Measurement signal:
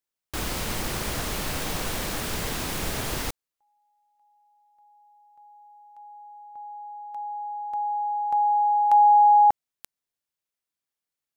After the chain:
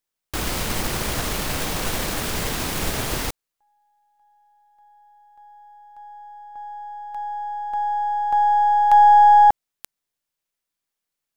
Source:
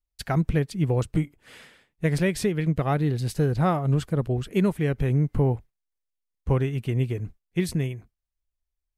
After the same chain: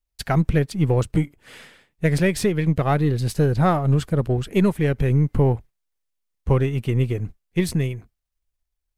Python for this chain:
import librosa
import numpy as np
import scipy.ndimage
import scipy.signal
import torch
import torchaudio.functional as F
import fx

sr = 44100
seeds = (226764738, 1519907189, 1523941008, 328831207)

y = np.where(x < 0.0, 10.0 ** (-3.0 / 20.0) * x, x)
y = y * 10.0 ** (5.5 / 20.0)